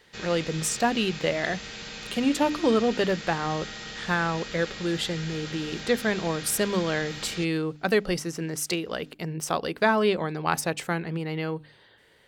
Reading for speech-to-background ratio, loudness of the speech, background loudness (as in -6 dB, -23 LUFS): 10.0 dB, -27.0 LUFS, -37.0 LUFS